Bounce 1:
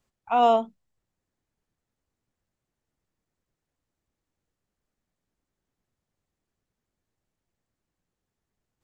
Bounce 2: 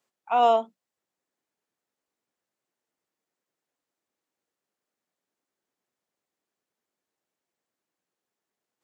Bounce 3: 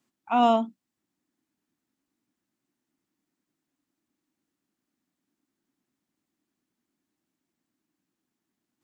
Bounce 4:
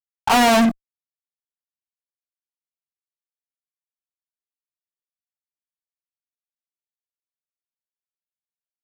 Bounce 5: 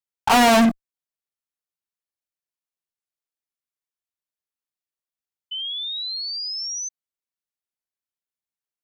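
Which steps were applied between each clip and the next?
high-pass filter 330 Hz 12 dB per octave
low shelf with overshoot 370 Hz +8 dB, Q 3; level +1 dB
brickwall limiter −17 dBFS, peak gain reduction 6.5 dB; fuzz pedal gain 46 dB, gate −54 dBFS
sound drawn into the spectrogram rise, 0:05.51–0:06.89, 3,000–6,200 Hz −29 dBFS

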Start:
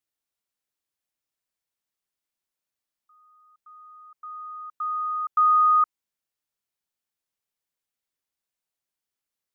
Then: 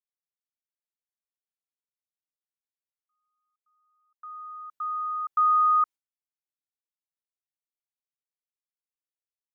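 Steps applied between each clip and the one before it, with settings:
noise gate with hold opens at −44 dBFS
level −2.5 dB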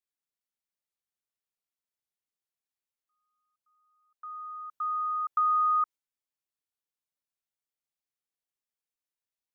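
downward compressor 2.5 to 1, threshold −25 dBFS, peak gain reduction 4 dB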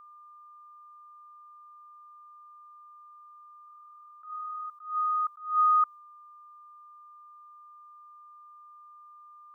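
steady tone 1,200 Hz −52 dBFS
level that may rise only so fast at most 130 dB per second
level +3 dB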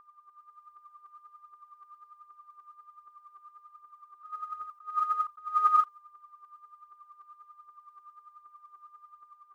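automatic gain control gain up to 4 dB
phase shifter 1.3 Hz, delay 3.4 ms, feedback 62%
level −8 dB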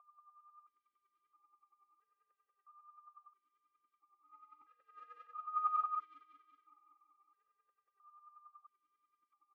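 on a send: repeating echo 186 ms, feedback 60%, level −4.5 dB
on the sum: formant filter that steps through the vowels 1.5 Hz

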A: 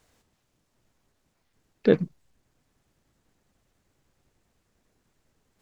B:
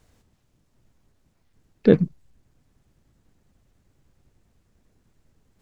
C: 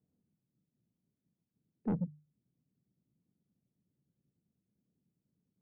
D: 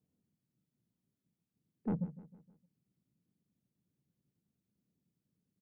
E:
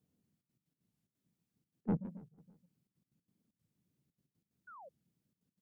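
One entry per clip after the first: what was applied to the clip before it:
low-shelf EQ 270 Hz +10.5 dB
four-pole ladder band-pass 200 Hz, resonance 40%; soft clipping −25 dBFS, distortion −10 dB; mains-hum notches 50/100/150 Hz; level −2.5 dB
repeating echo 155 ms, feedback 46%, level −16.5 dB; level −1.5 dB
gate pattern "xxxxx.x.x.xxx.x" 183 BPM −12 dB; sound drawn into the spectrogram fall, 0:04.67–0:04.91, 520–1,500 Hz −55 dBFS; wow of a warped record 45 rpm, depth 250 cents; level +2 dB

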